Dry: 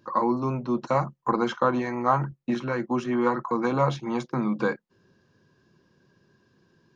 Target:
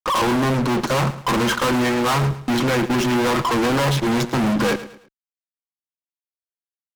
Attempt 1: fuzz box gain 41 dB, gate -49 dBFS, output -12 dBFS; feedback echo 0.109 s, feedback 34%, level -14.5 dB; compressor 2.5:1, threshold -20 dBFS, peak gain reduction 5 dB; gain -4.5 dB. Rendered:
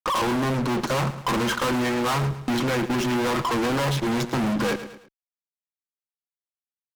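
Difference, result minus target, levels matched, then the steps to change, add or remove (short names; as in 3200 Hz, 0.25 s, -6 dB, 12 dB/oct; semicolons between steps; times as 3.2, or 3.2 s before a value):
compressor: peak gain reduction +5 dB
remove: compressor 2.5:1, threshold -20 dBFS, peak gain reduction 5 dB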